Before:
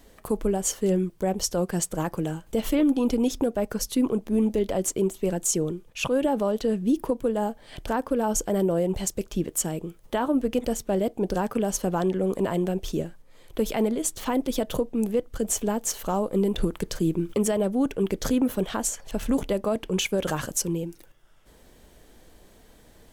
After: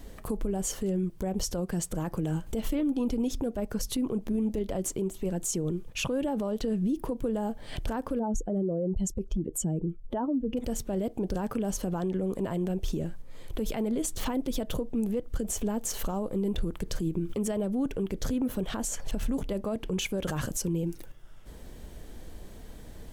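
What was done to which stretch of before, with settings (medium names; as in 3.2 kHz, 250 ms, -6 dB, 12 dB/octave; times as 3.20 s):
8.19–10.57 s: spectral contrast enhancement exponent 1.7
whole clip: bass shelf 240 Hz +9.5 dB; compression, threshold -25 dBFS; peak limiter -24 dBFS; trim +2 dB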